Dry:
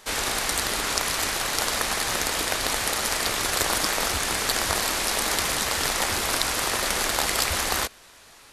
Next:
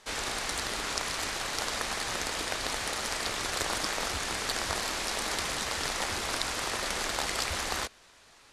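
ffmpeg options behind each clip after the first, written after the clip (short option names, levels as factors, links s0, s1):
-af "lowpass=8500,volume=0.473"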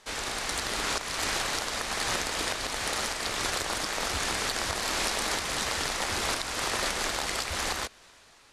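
-af "dynaudnorm=f=120:g=11:m=1.88,alimiter=limit=0.168:level=0:latency=1:release=349"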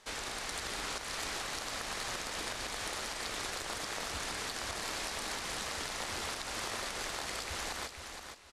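-filter_complex "[0:a]acompressor=threshold=0.0224:ratio=4,asplit=2[s0][s1];[s1]aecho=0:1:470|940|1410:0.447|0.0983|0.0216[s2];[s0][s2]amix=inputs=2:normalize=0,volume=0.668"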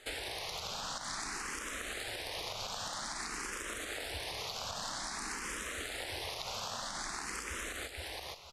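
-filter_complex "[0:a]acompressor=threshold=0.00891:ratio=6,asplit=2[s0][s1];[s1]afreqshift=0.51[s2];[s0][s2]amix=inputs=2:normalize=1,volume=2.24"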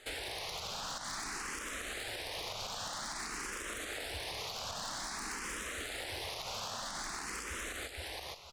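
-af "asoftclip=type=hard:threshold=0.0188"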